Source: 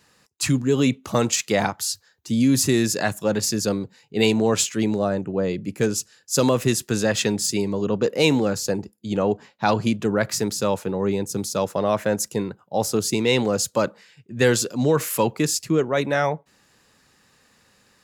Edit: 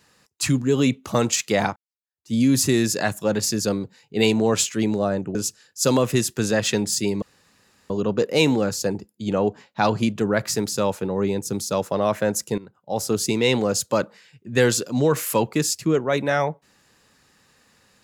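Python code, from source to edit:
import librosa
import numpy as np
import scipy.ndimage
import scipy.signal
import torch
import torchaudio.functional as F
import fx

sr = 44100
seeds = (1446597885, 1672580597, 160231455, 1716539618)

y = fx.edit(x, sr, fx.fade_in_span(start_s=1.76, length_s=0.58, curve='exp'),
    fx.cut(start_s=5.35, length_s=0.52),
    fx.insert_room_tone(at_s=7.74, length_s=0.68),
    fx.fade_in_from(start_s=12.42, length_s=0.57, floor_db=-16.0), tone=tone)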